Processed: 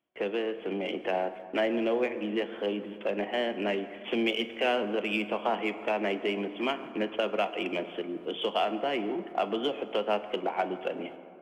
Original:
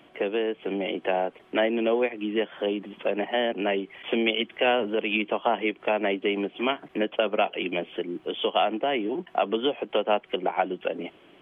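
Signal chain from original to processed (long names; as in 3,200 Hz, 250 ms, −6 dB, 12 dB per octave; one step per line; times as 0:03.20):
noise gate −43 dBFS, range −27 dB
in parallel at −9 dB: gain into a clipping stage and back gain 26.5 dB
on the sum: convolution reverb RT60 2.6 s, pre-delay 7 ms, DRR 9.5 dB
level −6 dB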